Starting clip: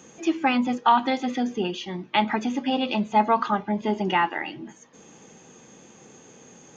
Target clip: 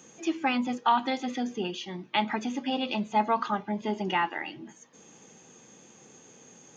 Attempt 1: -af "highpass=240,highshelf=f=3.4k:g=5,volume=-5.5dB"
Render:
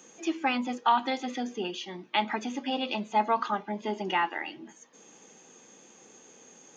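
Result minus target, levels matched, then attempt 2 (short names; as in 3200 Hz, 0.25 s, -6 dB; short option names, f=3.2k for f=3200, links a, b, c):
125 Hz band -4.5 dB
-af "highpass=65,highshelf=f=3.4k:g=5,volume=-5.5dB"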